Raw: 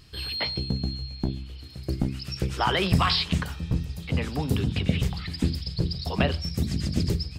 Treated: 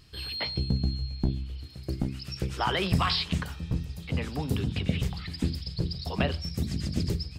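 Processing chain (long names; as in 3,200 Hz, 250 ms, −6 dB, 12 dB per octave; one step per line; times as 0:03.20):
0:00.54–0:01.66: low-shelf EQ 170 Hz +7.5 dB
level −3.5 dB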